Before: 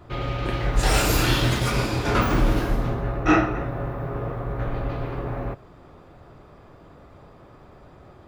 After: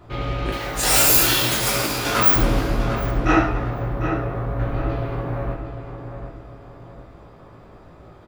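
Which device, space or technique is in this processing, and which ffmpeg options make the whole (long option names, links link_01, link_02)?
slapback doubling: -filter_complex "[0:a]asettb=1/sr,asplit=3[link_01][link_02][link_03];[link_01]atrim=end=0.524[link_04];[link_02]atrim=start=0.52:end=2.36,asetpts=PTS-STARTPTS,afade=type=in:duration=0.004:curve=qsin,afade=type=out:start_time=1.836:duration=0.004:curve=qsin,aemphasis=mode=production:type=bsi[link_05];[link_03]atrim=start=2.356[link_06];[link_04][link_05]acrossfade=duration=0.004:curve1=hsin:curve2=qsin[link_07];[link_07][link_06]acrossfade=duration=0.004:curve1=qsin:curve2=hsin,asplit=2[link_08][link_09];[link_09]adelay=750,lowpass=frequency=2600:poles=1,volume=-8dB,asplit=2[link_10][link_11];[link_11]adelay=750,lowpass=frequency=2600:poles=1,volume=0.37,asplit=2[link_12][link_13];[link_13]adelay=750,lowpass=frequency=2600:poles=1,volume=0.37,asplit=2[link_14][link_15];[link_15]adelay=750,lowpass=frequency=2600:poles=1,volume=0.37[link_16];[link_08][link_10][link_12][link_14][link_16]amix=inputs=5:normalize=0,asplit=3[link_17][link_18][link_19];[link_18]adelay=18,volume=-5dB[link_20];[link_19]adelay=71,volume=-8.5dB[link_21];[link_17][link_20][link_21]amix=inputs=3:normalize=0"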